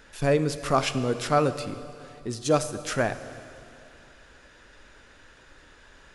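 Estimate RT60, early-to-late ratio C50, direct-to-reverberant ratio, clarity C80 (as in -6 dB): 2.6 s, 12.0 dB, 11.0 dB, 12.5 dB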